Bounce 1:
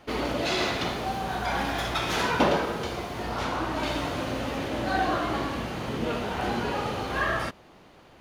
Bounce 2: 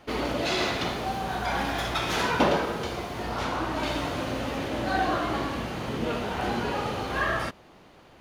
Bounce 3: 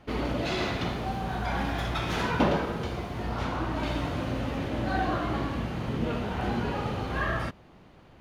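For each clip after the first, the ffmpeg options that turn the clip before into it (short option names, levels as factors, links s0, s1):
-af anull
-af "bass=f=250:g=8,treble=f=4000:g=-5,volume=0.668"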